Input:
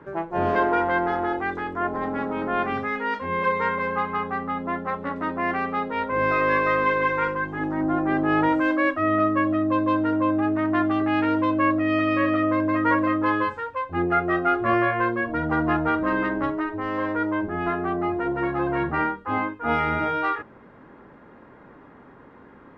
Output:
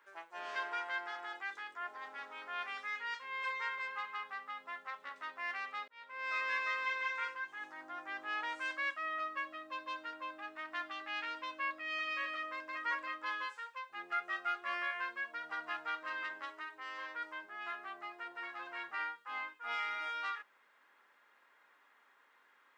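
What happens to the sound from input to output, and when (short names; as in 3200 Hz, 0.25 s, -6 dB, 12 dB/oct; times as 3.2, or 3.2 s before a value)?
5.88–6.35 fade in
whole clip: HPF 1200 Hz 6 dB/oct; differentiator; gain +3 dB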